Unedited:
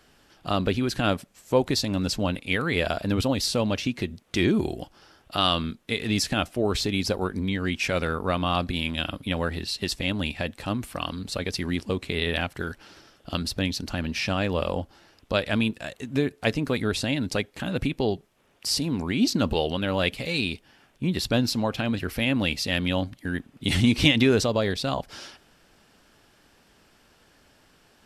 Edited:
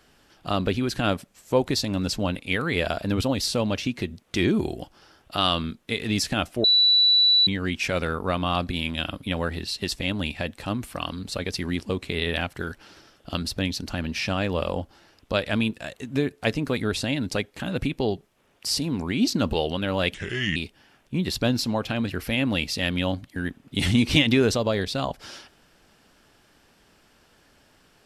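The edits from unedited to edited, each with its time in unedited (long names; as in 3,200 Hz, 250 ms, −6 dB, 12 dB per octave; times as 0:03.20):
0:06.64–0:07.47: beep over 3,950 Hz −14.5 dBFS
0:20.14–0:20.45: play speed 74%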